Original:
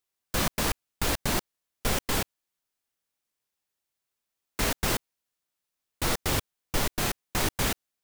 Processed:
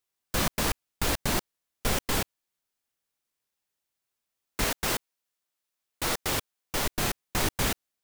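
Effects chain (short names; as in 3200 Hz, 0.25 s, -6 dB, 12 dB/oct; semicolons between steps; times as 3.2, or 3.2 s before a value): 4.64–6.85 low shelf 230 Hz -7.5 dB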